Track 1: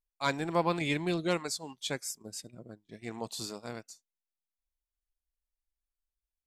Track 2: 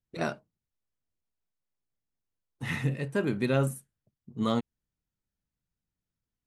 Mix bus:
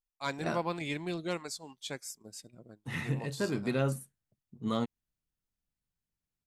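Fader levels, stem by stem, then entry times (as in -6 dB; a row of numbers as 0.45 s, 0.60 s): -5.0 dB, -4.0 dB; 0.00 s, 0.25 s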